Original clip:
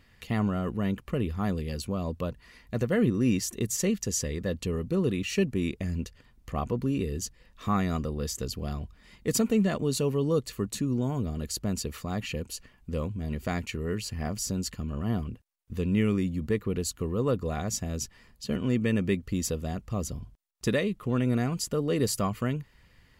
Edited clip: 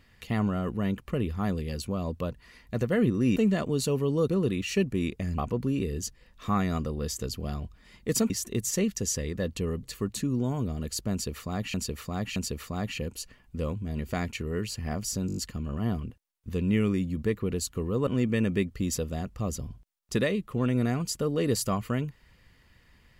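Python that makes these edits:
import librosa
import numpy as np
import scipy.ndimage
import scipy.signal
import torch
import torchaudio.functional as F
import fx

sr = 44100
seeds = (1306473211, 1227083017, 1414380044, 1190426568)

y = fx.edit(x, sr, fx.swap(start_s=3.36, length_s=1.53, other_s=9.49, other_length_s=0.92),
    fx.cut(start_s=5.99, length_s=0.58),
    fx.repeat(start_s=11.7, length_s=0.62, count=3),
    fx.stutter(start_s=14.61, slice_s=0.02, count=6),
    fx.cut(start_s=17.31, length_s=1.28), tone=tone)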